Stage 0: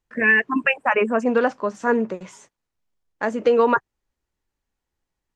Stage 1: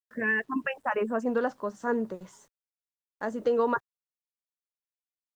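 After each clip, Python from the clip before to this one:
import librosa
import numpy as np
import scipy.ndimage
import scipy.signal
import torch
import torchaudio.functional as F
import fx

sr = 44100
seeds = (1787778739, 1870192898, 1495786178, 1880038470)

y = fx.peak_eq(x, sr, hz=2400.0, db=-11.5, octaves=0.43)
y = fx.quant_dither(y, sr, seeds[0], bits=10, dither='none')
y = fx.low_shelf(y, sr, hz=75.0, db=10.0)
y = y * 10.0 ** (-8.5 / 20.0)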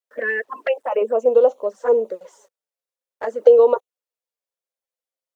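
y = fx.highpass_res(x, sr, hz=510.0, q=4.9)
y = fx.env_flanger(y, sr, rest_ms=7.6, full_db=-20.0)
y = y * 10.0 ** (4.5 / 20.0)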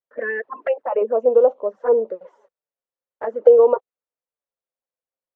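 y = scipy.signal.sosfilt(scipy.signal.butter(2, 1600.0, 'lowpass', fs=sr, output='sos'), x)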